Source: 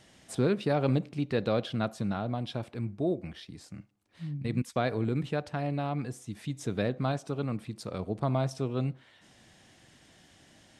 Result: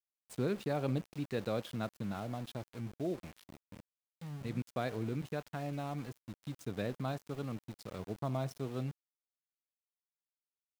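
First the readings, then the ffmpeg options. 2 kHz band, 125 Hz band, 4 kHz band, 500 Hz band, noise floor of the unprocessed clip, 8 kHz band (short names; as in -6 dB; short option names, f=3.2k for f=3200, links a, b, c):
-7.0 dB, -7.5 dB, -8.0 dB, -7.5 dB, -60 dBFS, -8.0 dB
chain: -af "aeval=exprs='val(0)*gte(abs(val(0)),0.0106)':c=same,volume=-7.5dB"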